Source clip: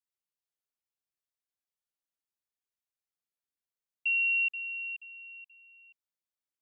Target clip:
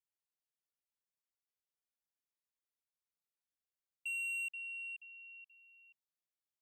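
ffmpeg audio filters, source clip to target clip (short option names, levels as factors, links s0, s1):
-af "asoftclip=type=tanh:threshold=0.0316,volume=0.473"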